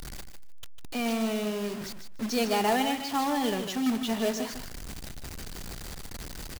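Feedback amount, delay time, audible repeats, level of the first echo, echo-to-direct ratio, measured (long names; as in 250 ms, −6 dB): 16%, 151 ms, 2, −9.0 dB, −9.0 dB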